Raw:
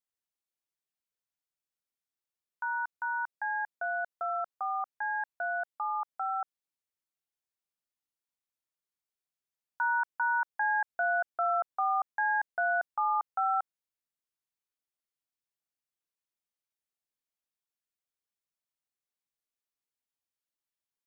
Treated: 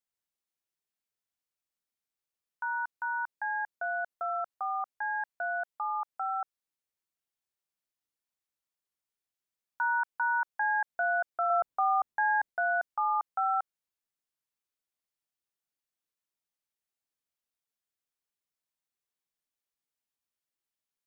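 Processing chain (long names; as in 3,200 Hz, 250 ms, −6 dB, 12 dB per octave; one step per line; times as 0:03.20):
0:11.50–0:12.50: low-shelf EQ 480 Hz +9.5 dB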